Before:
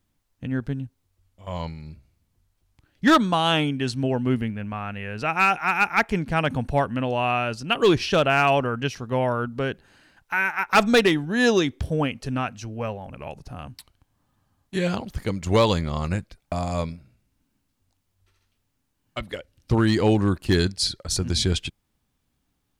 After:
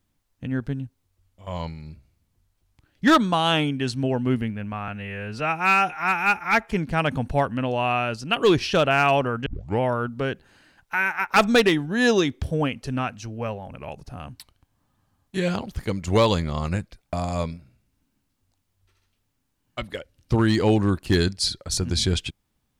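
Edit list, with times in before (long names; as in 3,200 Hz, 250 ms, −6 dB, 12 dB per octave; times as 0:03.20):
0:04.88–0:06.10: time-stretch 1.5×
0:08.85: tape start 0.34 s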